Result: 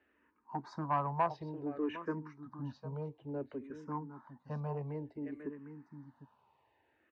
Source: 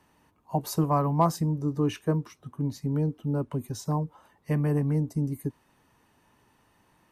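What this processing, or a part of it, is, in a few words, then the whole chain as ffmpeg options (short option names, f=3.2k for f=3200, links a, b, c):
barber-pole phaser into a guitar amplifier: -filter_complex "[0:a]aecho=1:1:756:0.266,asplit=2[a][b];[b]afreqshift=-0.57[c];[a][c]amix=inputs=2:normalize=1,asoftclip=type=tanh:threshold=-18.5dB,highpass=95,equalizer=f=110:t=q:w=4:g=-9,equalizer=f=170:t=q:w=4:g=-10,equalizer=f=930:t=q:w=4:g=6,equalizer=f=1.6k:t=q:w=4:g=6,equalizer=f=3.2k:t=q:w=4:g=-5,lowpass=f=3.6k:w=0.5412,lowpass=f=3.6k:w=1.3066,volume=-6dB"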